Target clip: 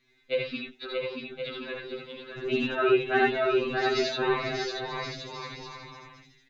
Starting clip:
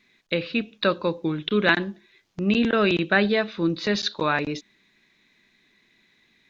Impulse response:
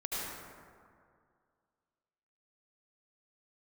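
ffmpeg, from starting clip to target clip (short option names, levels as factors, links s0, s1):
-filter_complex "[0:a]lowshelf=f=210:g=7,asettb=1/sr,asplit=3[s0][s1][s2];[s0]atrim=end=0.604[s3];[s1]atrim=start=0.6:end=1.85,asetpts=PTS-STARTPTS,afade=t=in:d=0.004:c=qsin,afade=t=out:st=1.246:d=0.004:c=qsin,acompressor=threshold=0.0316:ratio=12[s4];[s2]atrim=start=1.846[s5];[s3][s4]acrossfade=d=0.004:c1=hsin:c2=qsin[s6];[s6][s5]acrossfade=d=0.004:c1=qsin:c2=hsin,asettb=1/sr,asplit=3[s7][s8][s9];[s7]atrim=end=2.674[s10];[s8]atrim=start=2.67:end=3.45,asetpts=PTS-STARTPTS,afade=t=in:d=0.004:c=qsin,afade=t=out:st=0.776:d=0.004:c=qsin,highpass=100,lowpass=2500[s11];[s9]atrim=start=3.446[s12];[s10][s11]acrossfade=d=0.004:c1=hsin:c2=qsin[s13];[s13][s12]acrossfade=d=0.004:c1=qsin:c2=hsin,aecho=1:1:630|1071|1380|1596|1747:0.631|0.398|0.251|0.158|0.1[s14];[1:a]atrim=start_sample=2205,atrim=end_sample=3969[s15];[s14][s15]afir=irnorm=-1:irlink=0,afftfilt=real='re*2.45*eq(mod(b,6),0)':imag='im*2.45*eq(mod(b,6),0)':win_size=2048:overlap=0.75,volume=0.891"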